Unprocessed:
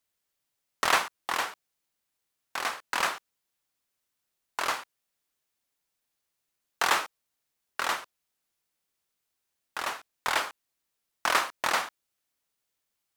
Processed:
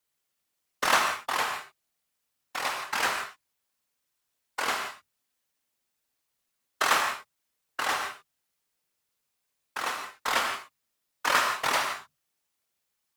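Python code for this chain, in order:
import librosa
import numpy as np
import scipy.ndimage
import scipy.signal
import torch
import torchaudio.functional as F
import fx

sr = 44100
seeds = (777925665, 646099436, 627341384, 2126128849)

y = fx.hum_notches(x, sr, base_hz=60, count=3)
y = fx.whisperise(y, sr, seeds[0])
y = fx.rev_gated(y, sr, seeds[1], gate_ms=190, shape='flat', drr_db=3.0)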